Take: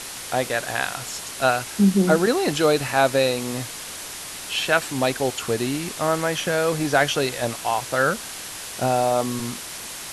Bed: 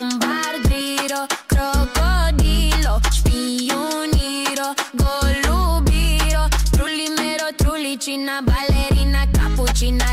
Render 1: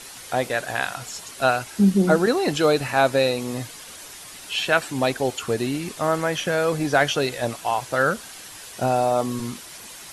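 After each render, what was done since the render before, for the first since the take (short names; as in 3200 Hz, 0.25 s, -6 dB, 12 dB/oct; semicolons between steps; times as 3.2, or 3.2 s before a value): denoiser 8 dB, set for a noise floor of -35 dBFS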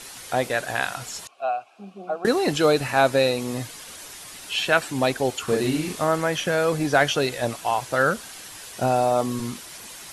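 1.27–2.25 vowel filter a; 5.44–6.04 doubler 39 ms -2 dB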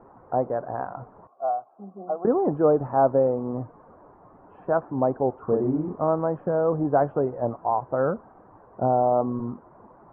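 steep low-pass 1100 Hz 36 dB/oct; low shelf 67 Hz -6.5 dB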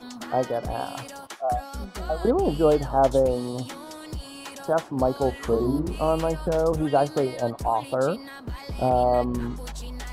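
add bed -18 dB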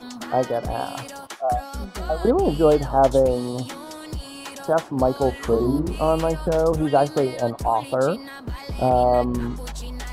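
gain +3 dB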